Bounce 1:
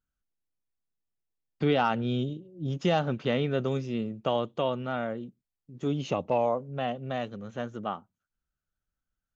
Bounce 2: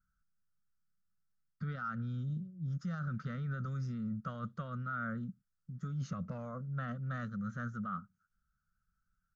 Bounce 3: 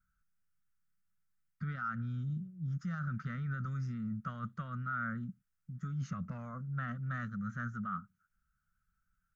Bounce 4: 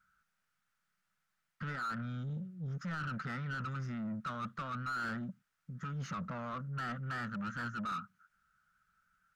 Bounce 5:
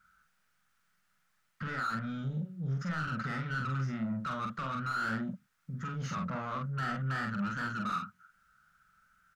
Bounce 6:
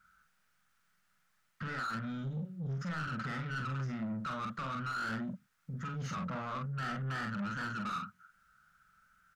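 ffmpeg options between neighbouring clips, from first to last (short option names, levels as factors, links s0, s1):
-af "alimiter=level_in=1.06:limit=0.0631:level=0:latency=1,volume=0.944,firequalizer=gain_entry='entry(120,0);entry(190,5);entry(310,-23);entry(540,-16);entry(870,-26);entry(1300,7);entry(2600,-24);entry(4900,-6);entry(9900,-11)':delay=0.05:min_phase=1,areverse,acompressor=threshold=0.00891:ratio=6,areverse,volume=1.88"
-af "equalizer=f=500:t=o:w=1:g=-10,equalizer=f=2000:t=o:w=1:g=5,equalizer=f=4000:t=o:w=1:g=-6,volume=1.12"
-filter_complex "[0:a]asplit=2[s0][s1];[s1]highpass=f=720:p=1,volume=15.8,asoftclip=type=tanh:threshold=0.0501[s2];[s0][s2]amix=inputs=2:normalize=0,lowpass=f=2400:p=1,volume=0.501,volume=0.596"
-filter_complex "[0:a]asplit=2[s0][s1];[s1]alimiter=level_in=7.5:limit=0.0631:level=0:latency=1:release=412,volume=0.133,volume=0.891[s2];[s0][s2]amix=inputs=2:normalize=0,asplit=2[s3][s4];[s4]adelay=45,volume=0.708[s5];[s3][s5]amix=inputs=2:normalize=0"
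-af "asoftclip=type=tanh:threshold=0.0237"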